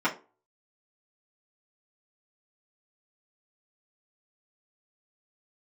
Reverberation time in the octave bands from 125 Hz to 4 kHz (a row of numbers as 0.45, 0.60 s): 0.25, 0.35, 0.35, 0.30, 0.25, 0.20 s